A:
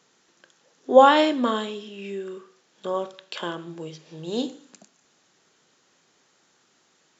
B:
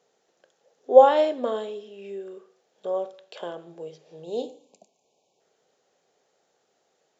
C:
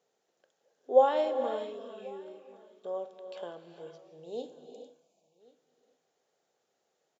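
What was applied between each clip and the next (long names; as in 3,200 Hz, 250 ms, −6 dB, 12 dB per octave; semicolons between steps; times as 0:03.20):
flat-topped bell 570 Hz +12 dB 1.2 octaves; time-frequency box erased 0:04.24–0:05.41, 1,100–2,200 Hz; level −10.5 dB
single-tap delay 1,088 ms −24 dB; reverb whose tail is shaped and stops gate 470 ms rising, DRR 8.5 dB; level −8.5 dB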